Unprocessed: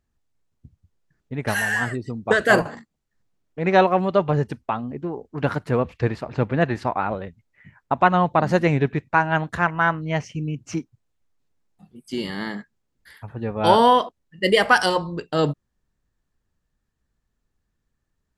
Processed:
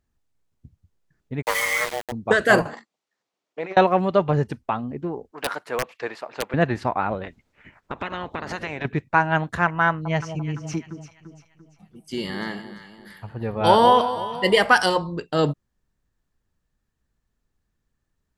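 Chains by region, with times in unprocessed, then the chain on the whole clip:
1.42–2.12 frequency shift +360 Hz + sample gate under -24.5 dBFS
2.73–3.77 bell 1600 Hz -4.5 dB 0.49 oct + negative-ratio compressor -24 dBFS, ratio -0.5 + BPF 490–6600 Hz
5.31–6.54 HPF 560 Hz + wrapped overs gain 15.5 dB
7.23–8.84 spectral limiter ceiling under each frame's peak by 21 dB + LPF 4000 Hz 6 dB/oct + compressor 5:1, threshold -27 dBFS
9.88–14.59 bell 270 Hz -4.5 dB 0.43 oct + echo with dull and thin repeats by turns 0.171 s, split 950 Hz, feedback 65%, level -9 dB
whole clip: dry

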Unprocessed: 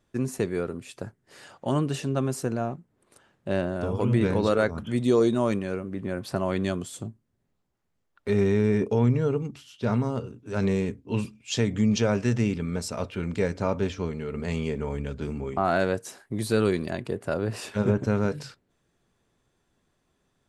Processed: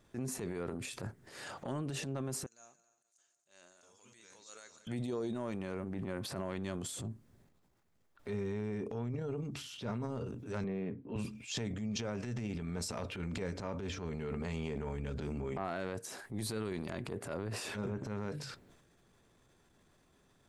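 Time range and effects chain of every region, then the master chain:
2.46–4.87 band-pass 6700 Hz, Q 8 + multi-head echo 92 ms, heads second and third, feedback 52%, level -21.5 dB
10.64–11.16 HPF 120 Hz 24 dB/oct + air absorption 440 m
whole clip: notch 2900 Hz, Q 27; compressor 10:1, threshold -38 dBFS; transient shaper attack -9 dB, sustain +8 dB; gain +3.5 dB

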